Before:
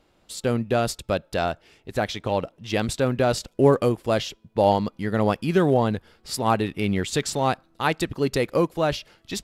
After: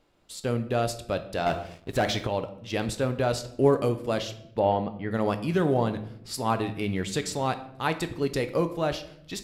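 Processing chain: 4.59–5.11 LPF 3100 Hz 24 dB/oct; shoebox room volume 170 m³, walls mixed, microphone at 0.36 m; 1.46–2.27 sample leveller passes 2; gain -5 dB

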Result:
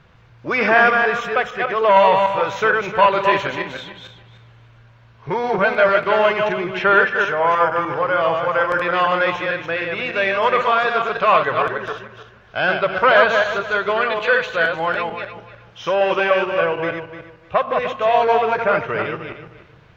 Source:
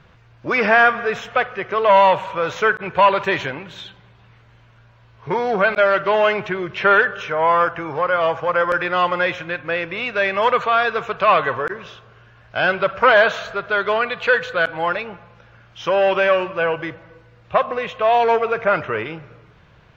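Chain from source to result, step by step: regenerating reverse delay 0.151 s, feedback 42%, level -3.5 dB; gain -1 dB

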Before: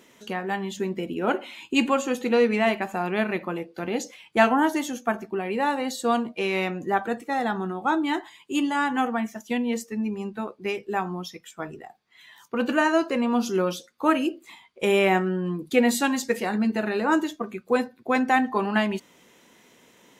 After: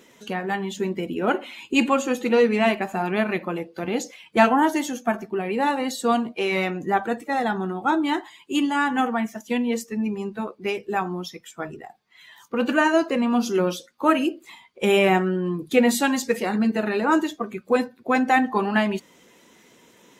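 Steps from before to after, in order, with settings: bin magnitudes rounded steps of 15 dB; gain +2.5 dB

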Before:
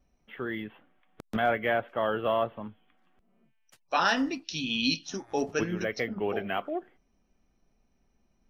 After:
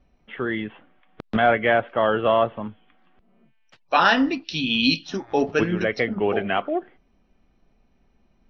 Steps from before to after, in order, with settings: LPF 4400 Hz 24 dB/oct; gain +8 dB

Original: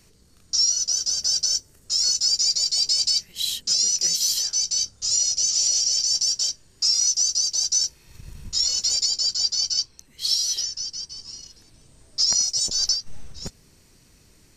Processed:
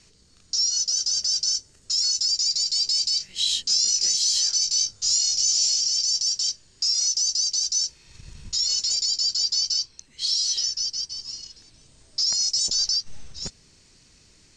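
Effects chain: LPF 7700 Hz 24 dB/oct; bell 5900 Hz +7.5 dB 2.9 oct; notch 5800 Hz, Q 27; limiter -12 dBFS, peak gain reduction 8 dB; 3.18–5.76 doubler 21 ms -2 dB; gain -3 dB

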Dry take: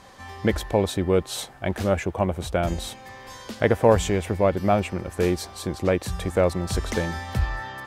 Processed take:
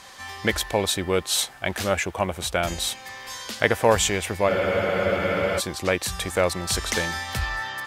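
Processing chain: tilt shelf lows -7.5 dB; spectral freeze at 4.5, 1.09 s; gain +2 dB

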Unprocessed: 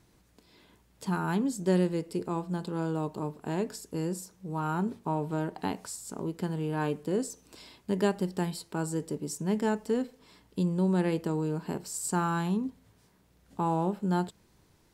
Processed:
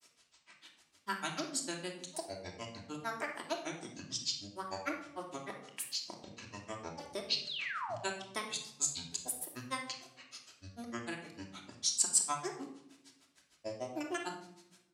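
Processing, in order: grains, grains 6.6/s, pitch spread up and down by 12 st; compressor, threshold -31 dBFS, peak gain reduction 8.5 dB; weighting filter ITU-R 468; painted sound fall, 7.47–7.96, 580–4400 Hz -42 dBFS; shoebox room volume 2000 m³, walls furnished, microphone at 2.9 m

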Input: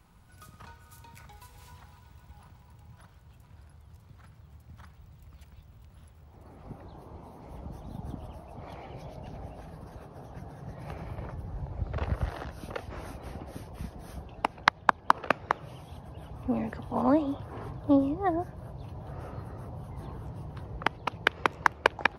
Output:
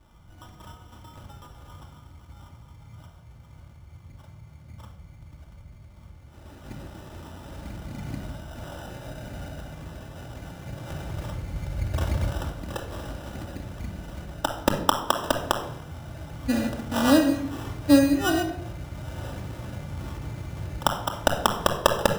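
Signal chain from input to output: sample-and-hold 20×; shoebox room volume 2000 m³, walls furnished, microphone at 2.5 m; gain +1.5 dB

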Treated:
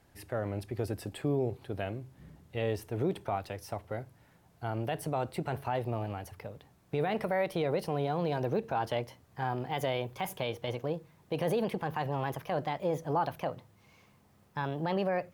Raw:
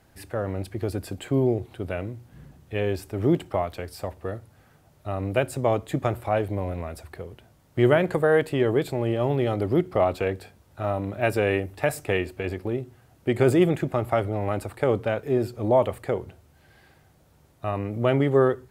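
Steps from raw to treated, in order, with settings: speed glide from 104% -> 140%; limiter -15.5 dBFS, peak gain reduction 11 dB; gain -5.5 dB

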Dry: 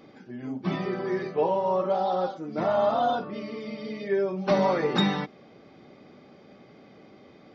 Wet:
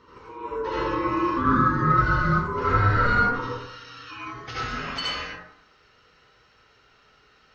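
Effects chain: HPF 220 Hz 12 dB/oct, from 3.45 s 1400 Hz; dynamic EQ 1100 Hz, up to -4 dB, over -38 dBFS, Q 1.4; ring modulator 710 Hz; reverb RT60 0.80 s, pre-delay 62 ms, DRR -7.5 dB

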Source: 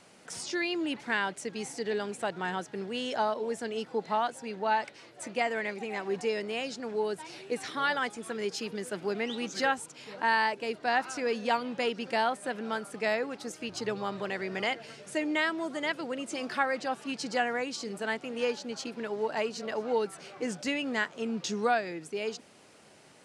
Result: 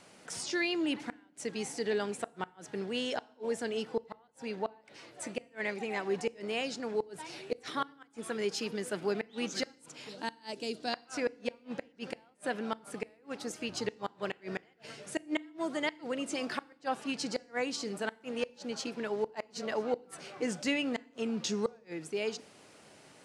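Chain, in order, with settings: 10.09–10.94 graphic EQ 125/250/500/1000/2000/4000/8000 Hz -4/+3/-3/-9/-10/+5/+5 dB; flipped gate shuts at -20 dBFS, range -37 dB; FDN reverb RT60 0.61 s, low-frequency decay 1.5×, high-frequency decay 1×, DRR 20 dB

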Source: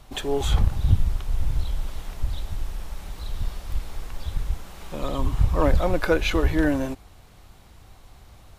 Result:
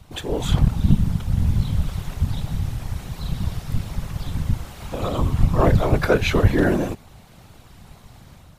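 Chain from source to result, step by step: AGC gain up to 5 dB; whisperiser; gain -1 dB

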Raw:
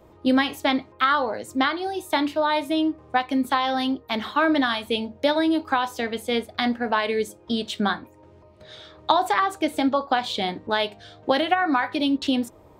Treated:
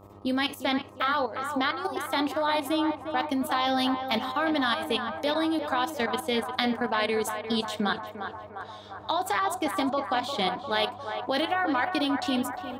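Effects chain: level quantiser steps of 13 dB; high shelf 6800 Hz +10 dB; narrowing echo 0.352 s, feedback 76%, band-pass 900 Hz, level -6 dB; buzz 100 Hz, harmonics 13, -52 dBFS -3 dB/oct

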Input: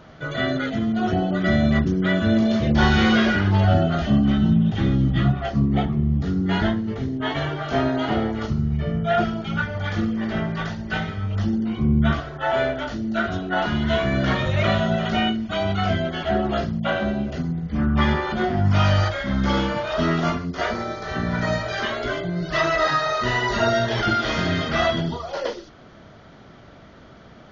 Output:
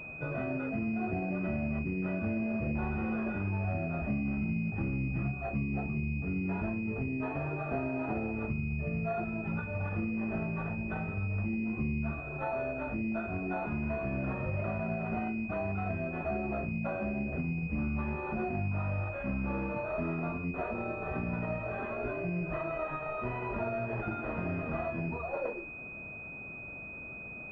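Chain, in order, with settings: compressor 6:1, threshold -27 dBFS, peak gain reduction 13.5 dB; pulse-width modulation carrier 2500 Hz; gain -3.5 dB

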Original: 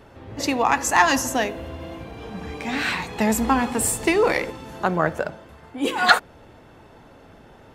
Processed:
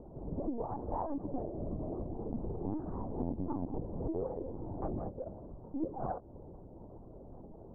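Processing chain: Bessel low-pass 500 Hz, order 8; compressor 12:1, threshold -33 dBFS, peak gain reduction 16 dB; ring modulator 41 Hz; careless resampling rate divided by 6×, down filtered, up hold; LPC vocoder at 8 kHz pitch kept; record warp 78 rpm, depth 160 cents; gain +3 dB

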